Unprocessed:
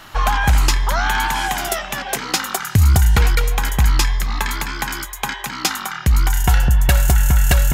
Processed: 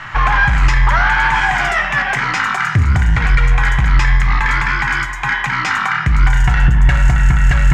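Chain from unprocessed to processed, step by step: ten-band graphic EQ 125 Hz +9 dB, 250 Hz -4 dB, 500 Hz -7 dB, 1 kHz +5 dB, 2 kHz +12 dB, 4 kHz -6 dB, 8 kHz +8 dB; peak limiter -7.5 dBFS, peak gain reduction 10 dB; waveshaping leveller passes 1; distance through air 170 m; on a send: reverberation RT60 1.0 s, pre-delay 5 ms, DRR 8 dB; on the sum: trim +1.5 dB

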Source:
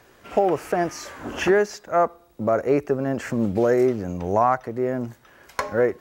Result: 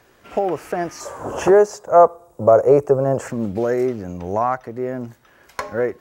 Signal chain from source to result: 1.00–3.28 s: ten-band graphic EQ 125 Hz +9 dB, 250 Hz -5 dB, 500 Hz +11 dB, 1 kHz +9 dB, 2 kHz -7 dB, 4 kHz -6 dB, 8 kHz +10 dB; trim -1 dB

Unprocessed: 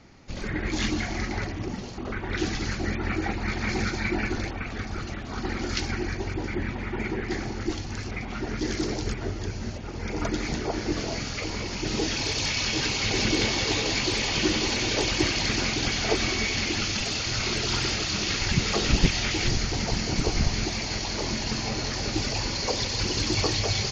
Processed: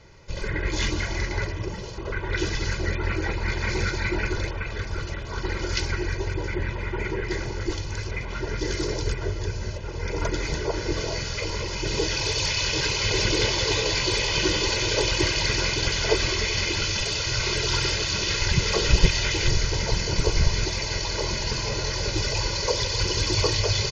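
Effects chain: comb 2 ms, depth 83%

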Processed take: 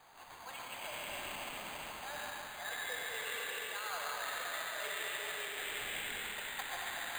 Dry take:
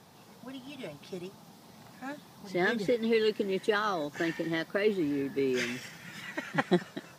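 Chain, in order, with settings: inverse Chebyshev high-pass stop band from 280 Hz, stop band 50 dB; treble shelf 3.3 kHz -5.5 dB; feedback echo behind a high-pass 140 ms, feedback 73%, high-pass 1.7 kHz, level -5 dB; in parallel at -1.5 dB: level held to a coarse grid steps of 10 dB; on the sum: transient shaper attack +1 dB, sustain +6 dB; reverse; compression 6:1, threshold -47 dBFS, peak gain reduction 24.5 dB; reverse; gate -54 dBFS, range -6 dB; reverberation RT60 4.9 s, pre-delay 65 ms, DRR -3.5 dB; careless resampling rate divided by 8×, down none, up hold; trim +3.5 dB

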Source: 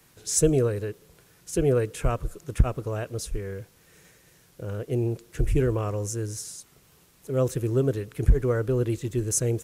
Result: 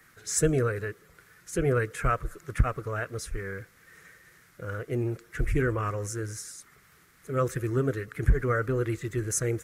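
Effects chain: coarse spectral quantiser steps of 15 dB; high-order bell 1.6 kHz +12 dB 1.1 oct; trim -3 dB

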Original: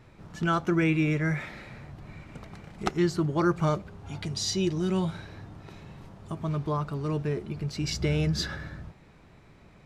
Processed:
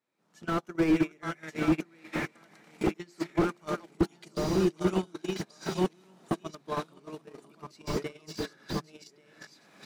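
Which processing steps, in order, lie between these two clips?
chunks repeated in reverse 451 ms, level -3 dB; recorder AGC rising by 37 dB/s; high-pass 200 Hz 24 dB/octave; treble shelf 4.8 kHz +11 dB; hum notches 50/100/150/200/250/300/350/400 Hz; delay 1136 ms -6 dB; gate -20 dBFS, range -37 dB; slew-rate limiter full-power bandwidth 18 Hz; trim +7 dB

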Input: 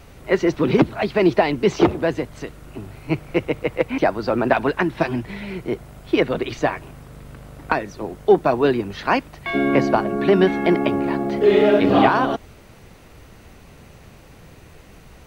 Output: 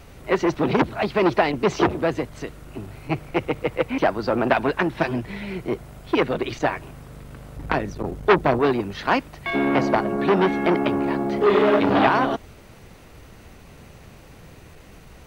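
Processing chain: 7.56–8.60 s: bass shelf 230 Hz +10.5 dB; transformer saturation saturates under 1.4 kHz

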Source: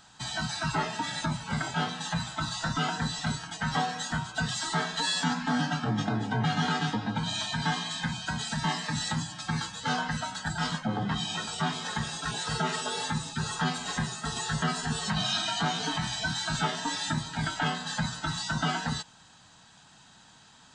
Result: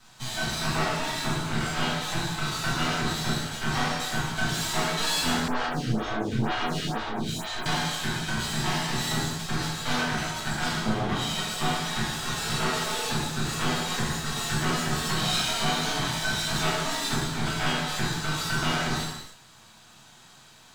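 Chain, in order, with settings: half-wave rectifier; gated-style reverb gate 360 ms falling, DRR -7 dB; 5.48–7.66 s: lamp-driven phase shifter 2.1 Hz

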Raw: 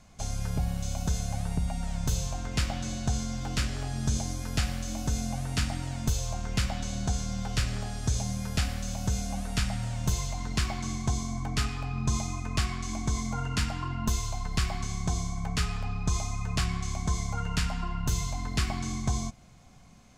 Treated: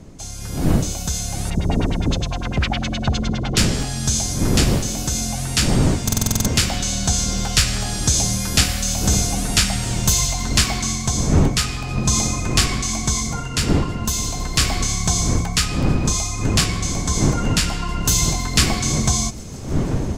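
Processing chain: wind noise 210 Hz -29 dBFS; 1.50–3.57 s: LFO low-pass sine 9.8 Hz 300–3600 Hz; feedback echo behind a high-pass 161 ms, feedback 83%, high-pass 5 kHz, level -23.5 dB; level rider gain up to 15 dB; treble shelf 2.5 kHz +11.5 dB; de-hum 59.79 Hz, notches 10; buffer glitch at 6.04 s, samples 2048, times 8; trim -4 dB

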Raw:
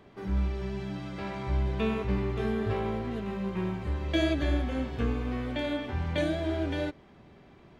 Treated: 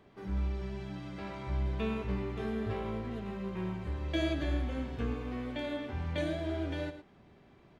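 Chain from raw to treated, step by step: delay 109 ms -11.5 dB; trim -5.5 dB

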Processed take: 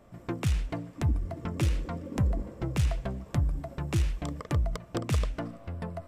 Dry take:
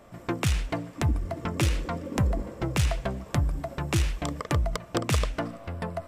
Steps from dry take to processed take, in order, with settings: bass shelf 380 Hz +7 dB; trim -8 dB

